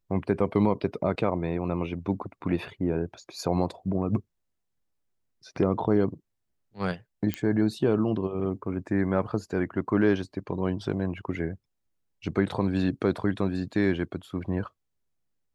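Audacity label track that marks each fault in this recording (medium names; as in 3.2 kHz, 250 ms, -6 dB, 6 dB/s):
7.340000	7.340000	pop -14 dBFS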